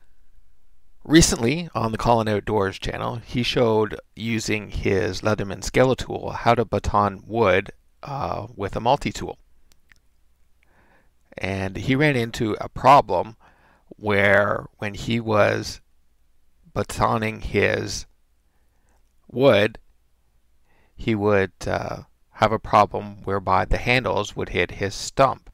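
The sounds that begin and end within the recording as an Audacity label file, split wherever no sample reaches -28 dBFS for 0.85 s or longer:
1.090000	9.320000	sound
11.380000	15.740000	sound
16.760000	18.010000	sound
19.350000	19.750000	sound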